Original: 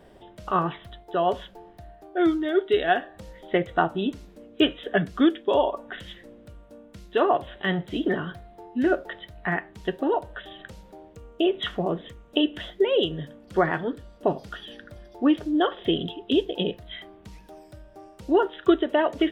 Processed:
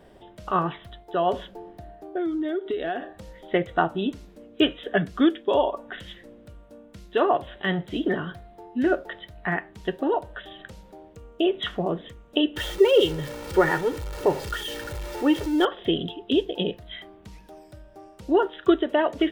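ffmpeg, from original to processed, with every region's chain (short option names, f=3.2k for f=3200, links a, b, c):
-filter_complex "[0:a]asettb=1/sr,asplit=3[a][b][c];[a]atrim=end=1.334[d];[b]atrim=start=1.33:end=3.13,asetpts=PTS-STARTPTS,afade=t=in:d=0.004:c=qsin,afade=t=out:st=1.796:d=0.004:c=qsin,equalizer=f=330:t=o:w=2.1:g=7,acompressor=threshold=-24dB:ratio=10:attack=3.2:release=140:knee=1:detection=peak[e];[c]atrim=start=3.126[f];[d][e]acrossfade=d=0.004:c1=hsin:c2=qsin[g];[g][f]acrossfade=d=0.004:c1=qsin:c2=hsin,asettb=1/sr,asplit=3[h][i][j];[h]atrim=end=12.564[k];[i]atrim=start=12.56:end=15.65,asetpts=PTS-STARTPTS,afade=t=in:d=0.004:c=qsin,afade=t=out:st=3.086:d=0.004:c=qsin,aeval=exprs='val(0)+0.5*0.0237*sgn(val(0))':c=same,aecho=1:1:2.2:0.69,atrim=end_sample=136269[l];[j]atrim=start=15.646[m];[k][l]acrossfade=d=0.004:c1=hsin:c2=qsin[n];[n][m]acrossfade=d=0.004:c1=qsin:c2=hsin"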